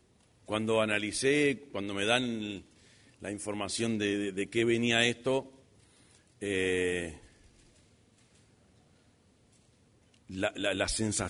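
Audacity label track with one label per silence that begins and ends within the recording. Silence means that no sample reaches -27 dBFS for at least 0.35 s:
2.510000	3.250000	silence
5.390000	6.430000	silence
7.050000	10.380000	silence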